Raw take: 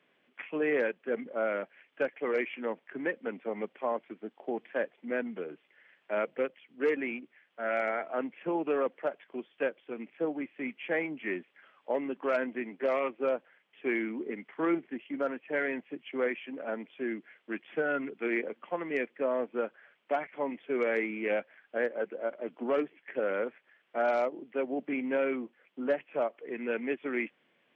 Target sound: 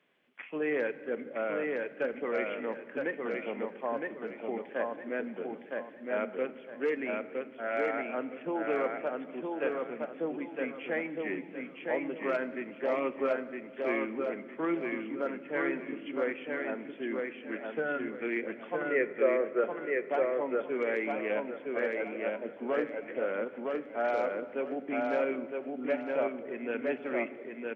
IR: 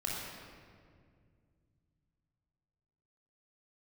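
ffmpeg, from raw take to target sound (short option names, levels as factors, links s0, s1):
-filter_complex "[0:a]asettb=1/sr,asplit=3[s0][s1][s2];[s0]atrim=end=18.884[s3];[s1]atrim=start=18.88:end=19.64,asetpts=PTS-STARTPTS,afade=t=in:d=0.004:c=qsin,afade=t=out:st=0.756:d=0.004:c=qsin,highpass=f=310:w=0.5412,highpass=f=310:w=1.3066,equalizer=f=380:t=q:w=4:g=9,equalizer=f=550:t=q:w=4:g=8,equalizer=f=900:t=q:w=4:g=-8,equalizer=f=1300:t=q:w=4:g=7,equalizer=f=1900:t=q:w=4:g=7,lowpass=f=2600:w=0.5412,lowpass=f=2600:w=1.3066[s4];[s2]atrim=start=19.636[s5];[s3][s4]acrossfade=d=0.004:c1=hsin:c2=qsin[s6];[s6][s5]acrossfade=d=0.004:c1=qsin:c2=hsin,aecho=1:1:963|1926|2889|3852:0.708|0.212|0.0637|0.0191,asplit=2[s7][s8];[1:a]atrim=start_sample=2205,lowshelf=f=220:g=11,adelay=37[s9];[s8][s9]afir=irnorm=-1:irlink=0,volume=0.112[s10];[s7][s10]amix=inputs=2:normalize=0,volume=0.75"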